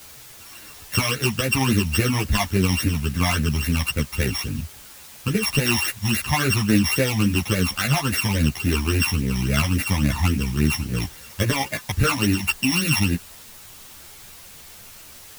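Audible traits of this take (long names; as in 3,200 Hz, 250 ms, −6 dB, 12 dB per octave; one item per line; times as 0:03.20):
a buzz of ramps at a fixed pitch in blocks of 16 samples
phaser sweep stages 12, 3.6 Hz, lowest notch 450–1,000 Hz
a quantiser's noise floor 8 bits, dither triangular
a shimmering, thickened sound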